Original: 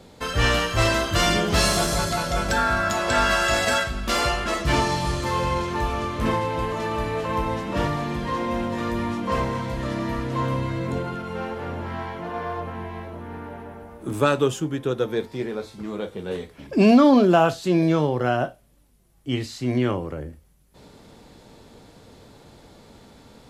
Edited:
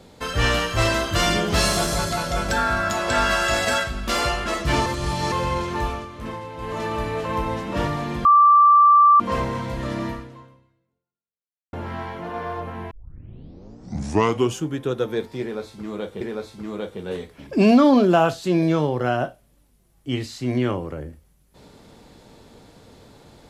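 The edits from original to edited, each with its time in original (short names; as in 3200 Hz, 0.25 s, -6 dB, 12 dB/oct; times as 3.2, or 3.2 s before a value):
4.86–5.32 reverse
5.87–6.77 dip -9.5 dB, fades 0.19 s
8.25–9.2 bleep 1170 Hz -9.5 dBFS
10.07–11.73 fade out exponential
12.91 tape start 1.71 s
15.41–16.21 loop, 2 plays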